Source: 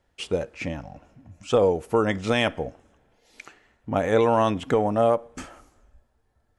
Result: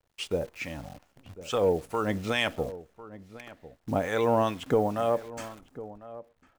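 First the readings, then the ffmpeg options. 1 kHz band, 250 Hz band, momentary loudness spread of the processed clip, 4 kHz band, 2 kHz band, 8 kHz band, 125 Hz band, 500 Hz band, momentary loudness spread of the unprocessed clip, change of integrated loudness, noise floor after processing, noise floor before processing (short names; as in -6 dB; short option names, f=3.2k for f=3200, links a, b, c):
-5.0 dB, -5.0 dB, 20 LU, -2.0 dB, -3.0 dB, -1.5 dB, -4.5 dB, -5.0 dB, 14 LU, -5.0 dB, -72 dBFS, -69 dBFS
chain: -filter_complex "[0:a]acrossover=split=930[a][b];[a]aeval=exprs='val(0)*(1-0.7/2+0.7/2*cos(2*PI*2.3*n/s))':c=same[c];[b]aeval=exprs='val(0)*(1-0.7/2-0.7/2*cos(2*PI*2.3*n/s))':c=same[d];[c][d]amix=inputs=2:normalize=0,acontrast=35,acrusher=bits=8:dc=4:mix=0:aa=0.000001,asplit=2[e][f];[f]adelay=1050,volume=-16dB,highshelf=f=4k:g=-23.6[g];[e][g]amix=inputs=2:normalize=0,volume=-6.5dB"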